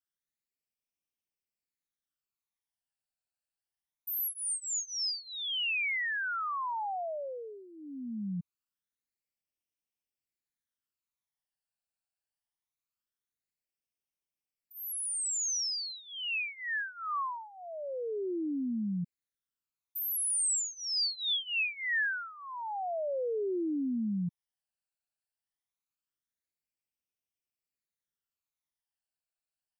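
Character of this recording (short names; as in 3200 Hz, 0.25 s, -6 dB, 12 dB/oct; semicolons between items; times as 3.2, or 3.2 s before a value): phasing stages 12, 0.23 Hz, lowest notch 350–1400 Hz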